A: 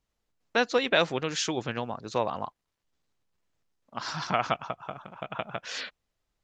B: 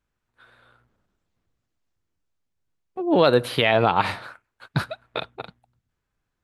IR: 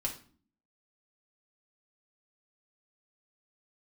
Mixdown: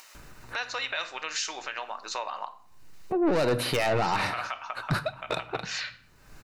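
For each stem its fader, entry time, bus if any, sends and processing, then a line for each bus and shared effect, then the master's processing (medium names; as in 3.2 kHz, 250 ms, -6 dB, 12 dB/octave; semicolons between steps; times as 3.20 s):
-5.5 dB, 0.00 s, send -4.5 dB, high-pass 1.1 kHz 12 dB/octave
+1.0 dB, 0.15 s, send -12.5 dB, saturation -20 dBFS, distortion -7 dB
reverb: on, RT60 0.45 s, pre-delay 3 ms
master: band-stop 3.3 kHz, Q 7.7; upward compressor, threshold -25 dBFS; peak limiter -19 dBFS, peak gain reduction 5.5 dB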